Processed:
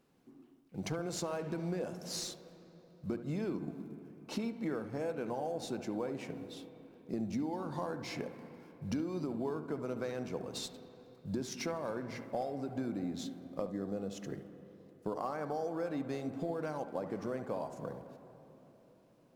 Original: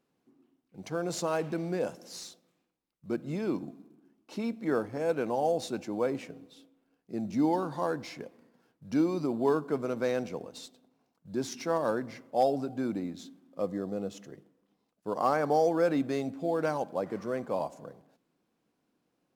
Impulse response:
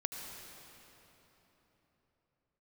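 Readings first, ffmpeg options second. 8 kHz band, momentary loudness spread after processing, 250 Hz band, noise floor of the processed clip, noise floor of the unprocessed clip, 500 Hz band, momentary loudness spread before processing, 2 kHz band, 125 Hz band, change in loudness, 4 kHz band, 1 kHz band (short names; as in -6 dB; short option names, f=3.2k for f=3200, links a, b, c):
-1.0 dB, 13 LU, -5.5 dB, -63 dBFS, -79 dBFS, -8.0 dB, 16 LU, -7.0 dB, -2.0 dB, -8.0 dB, -1.0 dB, -9.5 dB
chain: -filter_complex "[0:a]acompressor=threshold=-40dB:ratio=10,lowshelf=f=93:g=8.5,asplit=2[a][b];[1:a]atrim=start_sample=2205,lowpass=2.4k,adelay=71[c];[b][c]afir=irnorm=-1:irlink=0,volume=-9.5dB[d];[a][d]amix=inputs=2:normalize=0,volume=5dB"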